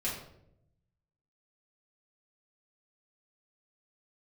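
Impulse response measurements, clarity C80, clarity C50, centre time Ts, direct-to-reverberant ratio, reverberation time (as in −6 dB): 7.5 dB, 4.5 dB, 40 ms, −8.0 dB, 0.75 s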